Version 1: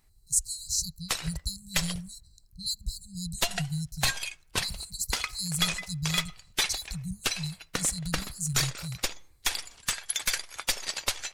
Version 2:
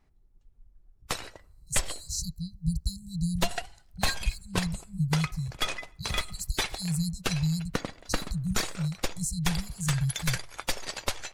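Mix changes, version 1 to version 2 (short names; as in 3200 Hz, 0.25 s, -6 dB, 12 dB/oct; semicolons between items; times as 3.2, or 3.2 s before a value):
speech: entry +1.40 s; master: add tilt shelf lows +5.5 dB, about 1400 Hz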